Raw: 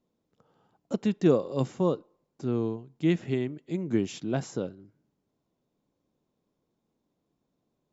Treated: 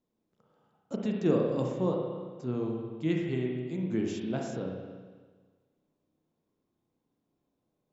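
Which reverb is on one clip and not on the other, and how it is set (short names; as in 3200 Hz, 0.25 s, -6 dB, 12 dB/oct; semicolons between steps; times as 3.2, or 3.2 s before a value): spring tank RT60 1.5 s, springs 32/54 ms, chirp 75 ms, DRR -0.5 dB; gain -5.5 dB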